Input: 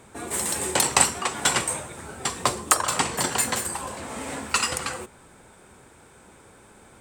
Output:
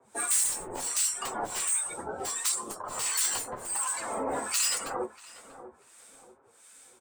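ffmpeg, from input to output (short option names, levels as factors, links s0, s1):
-filter_complex "[0:a]afftdn=nr=18:nf=-37,bass=f=250:g=-8,treble=f=4000:g=15,acrossover=split=130|3000[s0][s1][s2];[s1]acompressor=threshold=0.0794:ratio=10[s3];[s0][s3][s2]amix=inputs=3:normalize=0,acrossover=split=230|1200|2700[s4][s5][s6][s7];[s4]alimiter=level_in=11.2:limit=0.0631:level=0:latency=1:release=24,volume=0.0891[s8];[s8][s5][s6][s7]amix=inputs=4:normalize=0,acompressor=threshold=0.0891:ratio=20,asplit=2[s9][s10];[s10]highpass=f=720:p=1,volume=4.47,asoftclip=type=tanh:threshold=0.708[s11];[s9][s11]amix=inputs=2:normalize=0,lowpass=f=6400:p=1,volume=0.501,asoftclip=type=tanh:threshold=0.224,aeval=exprs='0.224*(cos(1*acos(clip(val(0)/0.224,-1,1)))-cos(1*PI/2))+0.00794*(cos(2*acos(clip(val(0)/0.224,-1,1)))-cos(2*PI/2))+0.0178*(cos(3*acos(clip(val(0)/0.224,-1,1)))-cos(3*PI/2))+0.0891*(cos(5*acos(clip(val(0)/0.224,-1,1)))-cos(5*PI/2))':c=same,acrossover=split=1200[s12][s13];[s12]aeval=exprs='val(0)*(1-1/2+1/2*cos(2*PI*1.4*n/s))':c=same[s14];[s13]aeval=exprs='val(0)*(1-1/2-1/2*cos(2*PI*1.4*n/s))':c=same[s15];[s14][s15]amix=inputs=2:normalize=0,flanger=delay=7.2:depth=5.8:regen=-22:speed=0.78:shape=triangular,asplit=2[s16][s17];[s17]adelay=639,lowpass=f=1100:p=1,volume=0.224,asplit=2[s18][s19];[s19]adelay=639,lowpass=f=1100:p=1,volume=0.39,asplit=2[s20][s21];[s21]adelay=639,lowpass=f=1100:p=1,volume=0.39,asplit=2[s22][s23];[s23]adelay=639,lowpass=f=1100:p=1,volume=0.39[s24];[s16][s18][s20][s22][s24]amix=inputs=5:normalize=0,adynamicequalizer=threshold=0.00501:dfrequency=1500:dqfactor=0.7:tfrequency=1500:tqfactor=0.7:attack=5:release=100:ratio=0.375:range=1.5:mode=cutabove:tftype=highshelf"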